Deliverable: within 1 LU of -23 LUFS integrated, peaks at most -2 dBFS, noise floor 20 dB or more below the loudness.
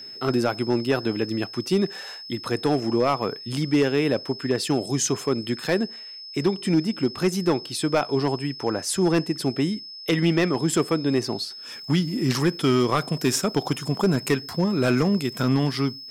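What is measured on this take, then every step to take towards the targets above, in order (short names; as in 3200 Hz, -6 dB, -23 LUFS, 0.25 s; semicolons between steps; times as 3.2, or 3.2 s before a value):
clipped 0.7%; flat tops at -13.0 dBFS; steady tone 5200 Hz; tone level -37 dBFS; loudness -24.0 LUFS; peak -13.0 dBFS; loudness target -23.0 LUFS
-> clip repair -13 dBFS; notch 5200 Hz, Q 30; gain +1 dB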